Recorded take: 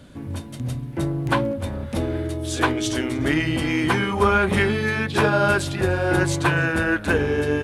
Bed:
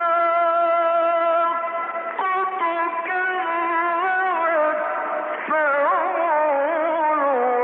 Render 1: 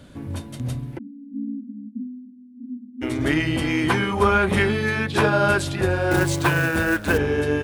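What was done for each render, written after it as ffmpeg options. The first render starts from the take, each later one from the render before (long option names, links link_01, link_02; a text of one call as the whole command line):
ffmpeg -i in.wav -filter_complex "[0:a]asplit=3[link_01][link_02][link_03];[link_01]afade=type=out:start_time=0.97:duration=0.02[link_04];[link_02]asuperpass=centerf=240:order=20:qfactor=3,afade=type=in:start_time=0.97:duration=0.02,afade=type=out:start_time=3.01:duration=0.02[link_05];[link_03]afade=type=in:start_time=3.01:duration=0.02[link_06];[link_04][link_05][link_06]amix=inputs=3:normalize=0,asettb=1/sr,asplit=3[link_07][link_08][link_09];[link_07]atrim=end=6.114[link_10];[link_08]atrim=start=6.11:end=7.18,asetpts=PTS-STARTPTS,afade=type=in:duration=0.004:curve=qsin,afade=type=out:start_time=1.066:duration=0.004:curve=qsin,acrusher=bits=4:mode=log:mix=0:aa=0.000001[link_11];[link_09]atrim=start=7.176[link_12];[link_10][link_11]acrossfade=duration=0.004:curve1=hsin:curve2=qsin[link_13];[link_13][link_12]acrossfade=duration=0.004:curve1=qsin:curve2=hsin" out.wav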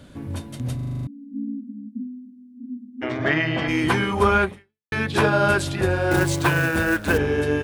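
ffmpeg -i in.wav -filter_complex "[0:a]asplit=3[link_01][link_02][link_03];[link_01]afade=type=out:start_time=3:duration=0.02[link_04];[link_02]highpass=frequency=110:width=0.5412,highpass=frequency=110:width=1.3066,equalizer=frequency=280:width_type=q:width=4:gain=-7,equalizer=frequency=670:width_type=q:width=4:gain=10,equalizer=frequency=1100:width_type=q:width=4:gain=6,equalizer=frequency=1700:width_type=q:width=4:gain=7,equalizer=frequency=4200:width_type=q:width=4:gain=-4,lowpass=frequency=5000:width=0.5412,lowpass=frequency=5000:width=1.3066,afade=type=in:start_time=3:duration=0.02,afade=type=out:start_time=3.67:duration=0.02[link_05];[link_03]afade=type=in:start_time=3.67:duration=0.02[link_06];[link_04][link_05][link_06]amix=inputs=3:normalize=0,asplit=10[link_07][link_08][link_09][link_10][link_11][link_12][link_13][link_14][link_15][link_16];[link_07]atrim=end=0.792[link_17];[link_08]atrim=start=0.748:end=0.792[link_18];[link_09]atrim=start=0.748:end=0.792[link_19];[link_10]atrim=start=0.748:end=0.792[link_20];[link_11]atrim=start=0.748:end=0.792[link_21];[link_12]atrim=start=0.748:end=0.792[link_22];[link_13]atrim=start=0.748:end=0.792[link_23];[link_14]atrim=start=0.748:end=0.792[link_24];[link_15]atrim=start=1.068:end=4.92,asetpts=PTS-STARTPTS,afade=type=out:start_time=3.372:duration=0.48:curve=exp[link_25];[link_16]atrim=start=4.92,asetpts=PTS-STARTPTS,afade=type=in:duration=0.004:curve=hsin[link_26];[link_17][link_18]acrossfade=duration=0.004:curve1=hsin:curve2=hsin[link_27];[link_27][link_19]acrossfade=duration=0.004:curve1=hsin:curve2=hsin[link_28];[link_28][link_20]acrossfade=duration=0.004:curve1=hsin:curve2=hsin[link_29];[link_29][link_21]acrossfade=duration=0.004:curve1=hsin:curve2=hsin[link_30];[link_30][link_22]acrossfade=duration=0.004:curve1=hsin:curve2=hsin[link_31];[link_31][link_23]acrossfade=duration=0.004:curve1=hsin:curve2=hsin[link_32];[link_32][link_24]acrossfade=duration=0.004:curve1=hsin:curve2=hsin[link_33];[link_25][link_26]concat=n=2:v=0:a=1[link_34];[link_33][link_34]acrossfade=duration=0.004:curve1=hsin:curve2=hsin" out.wav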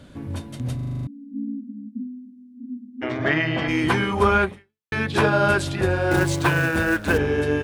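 ffmpeg -i in.wav -af "highshelf=frequency=9600:gain=-5.5" out.wav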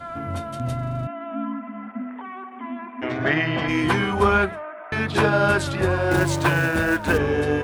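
ffmpeg -i in.wav -i bed.wav -filter_complex "[1:a]volume=-15dB[link_01];[0:a][link_01]amix=inputs=2:normalize=0" out.wav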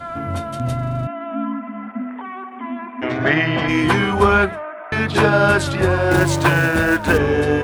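ffmpeg -i in.wav -af "volume=4.5dB,alimiter=limit=-2dB:level=0:latency=1" out.wav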